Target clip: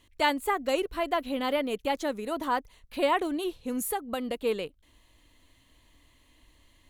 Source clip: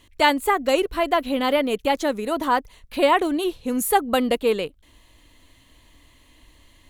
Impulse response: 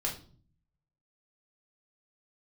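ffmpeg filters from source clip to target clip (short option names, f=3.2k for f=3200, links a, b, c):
-filter_complex "[0:a]asettb=1/sr,asplit=3[a][b][c];[a]atrim=end=3.904[d];[b]atrim=start=3.9:end=4.39,asetpts=PTS-STARTPTS,afade=t=in:d=0.004:c=qsin,afade=t=out:st=0.486:d=0.004:c=qsin,acompressor=threshold=-22dB:ratio=3[e];[c]atrim=start=4.386[f];[d][e]acrossfade=d=0.004:c1=hsin:c2=qsin[g];[g][f]acrossfade=d=0.004:c1=qsin:c2=hsin,volume=-7.5dB"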